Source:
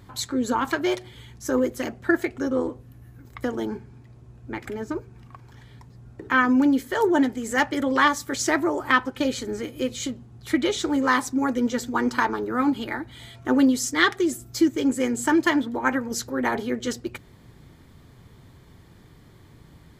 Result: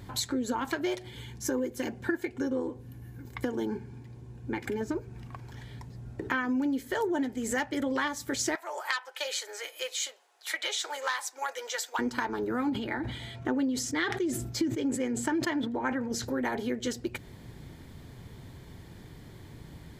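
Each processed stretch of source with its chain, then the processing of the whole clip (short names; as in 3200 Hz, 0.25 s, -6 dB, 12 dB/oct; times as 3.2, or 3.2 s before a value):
1.1–4.81 notches 50/100/150 Hz + notch comb 650 Hz
8.55–11.99 Bessel high-pass 930 Hz, order 8 + core saturation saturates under 2400 Hz
12.69–16.25 HPF 49 Hz + high shelf 6100 Hz -12 dB + sustainer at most 84 dB/s
whole clip: bell 1200 Hz -6.5 dB 0.29 oct; compressor 4:1, threshold -32 dBFS; gain +3 dB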